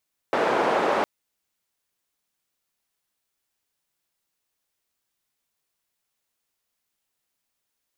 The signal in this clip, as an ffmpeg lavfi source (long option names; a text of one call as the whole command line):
ffmpeg -f lavfi -i "anoisesrc=color=white:duration=0.71:sample_rate=44100:seed=1,highpass=frequency=380,lowpass=frequency=800,volume=-1.2dB" out.wav